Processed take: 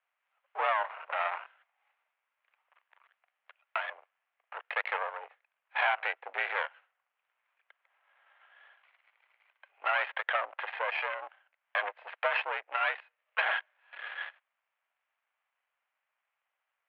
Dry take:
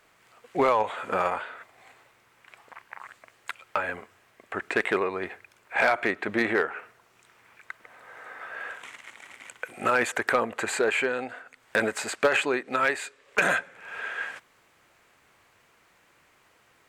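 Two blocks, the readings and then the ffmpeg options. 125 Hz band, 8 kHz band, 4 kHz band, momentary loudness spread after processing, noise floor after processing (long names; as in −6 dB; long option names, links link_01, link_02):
below −40 dB, below −40 dB, −4.5 dB, 13 LU, below −85 dBFS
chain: -af "afwtdn=0.0282,aeval=exprs='max(val(0),0)':channel_layout=same,highpass=frequency=570:width_type=q:width=0.5412,highpass=frequency=570:width_type=q:width=1.307,lowpass=frequency=3000:width_type=q:width=0.5176,lowpass=frequency=3000:width_type=q:width=0.7071,lowpass=frequency=3000:width_type=q:width=1.932,afreqshift=66"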